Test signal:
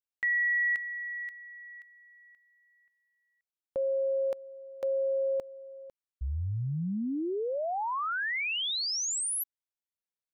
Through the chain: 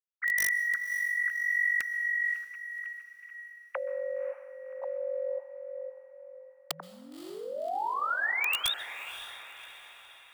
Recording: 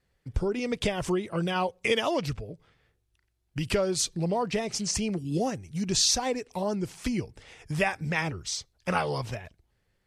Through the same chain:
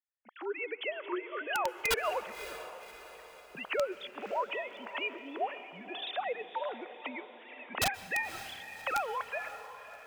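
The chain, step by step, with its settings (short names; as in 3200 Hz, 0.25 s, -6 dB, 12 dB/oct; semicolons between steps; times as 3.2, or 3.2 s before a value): sine-wave speech; recorder AGC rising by 19 dB/s, up to +24 dB; HPF 850 Hz 12 dB/oct; gate with hold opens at -56 dBFS; wrapped overs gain 22 dB; diffused feedback echo 0.561 s, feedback 48%, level -12.5 dB; plate-style reverb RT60 1.3 s, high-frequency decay 0.85×, pre-delay 0.115 s, DRR 17 dB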